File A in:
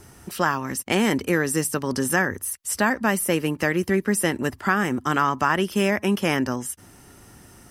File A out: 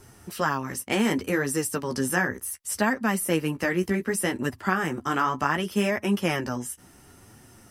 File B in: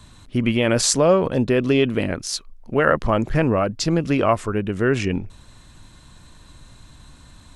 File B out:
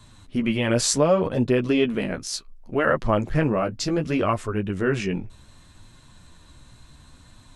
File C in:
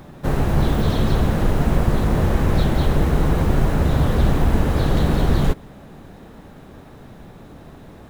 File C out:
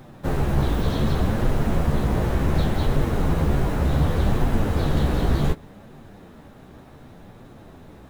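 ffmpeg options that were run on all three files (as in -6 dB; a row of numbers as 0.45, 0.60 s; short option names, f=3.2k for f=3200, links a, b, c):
-af "flanger=delay=7.4:depth=9.9:regen=-16:speed=0.67:shape=triangular"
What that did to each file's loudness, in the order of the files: -3.5, -3.0, -3.5 LU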